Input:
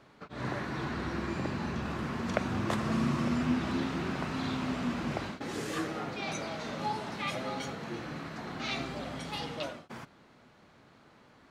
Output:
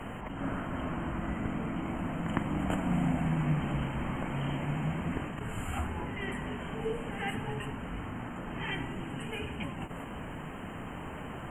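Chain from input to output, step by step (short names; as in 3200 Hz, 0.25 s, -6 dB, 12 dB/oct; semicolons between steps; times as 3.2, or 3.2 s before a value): FFT band-reject 3600–7300 Hz; in parallel at +1.5 dB: negative-ratio compressor -52 dBFS, ratio -0.5; on the sum: frequency shift -400 Hz; reverse echo 0.107 s -11.5 dB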